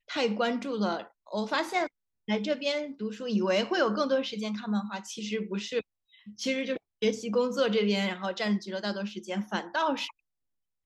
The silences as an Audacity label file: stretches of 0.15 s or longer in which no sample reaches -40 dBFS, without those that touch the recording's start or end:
1.060000	1.290000	silence
1.870000	2.280000	silence
5.810000	6.280000	silence
6.770000	7.020000	silence